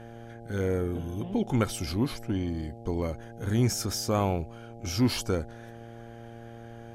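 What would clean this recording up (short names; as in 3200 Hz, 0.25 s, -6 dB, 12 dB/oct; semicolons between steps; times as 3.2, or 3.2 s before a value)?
de-hum 116 Hz, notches 7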